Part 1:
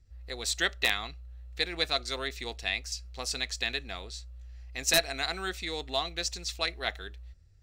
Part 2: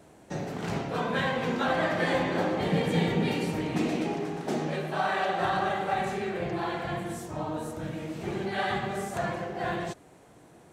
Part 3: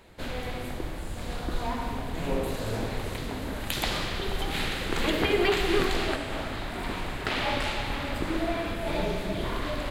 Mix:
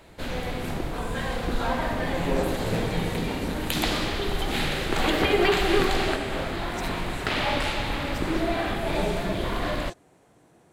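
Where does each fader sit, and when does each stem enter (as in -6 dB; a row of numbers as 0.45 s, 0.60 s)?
-17.5 dB, -4.0 dB, +2.5 dB; 1.90 s, 0.00 s, 0.00 s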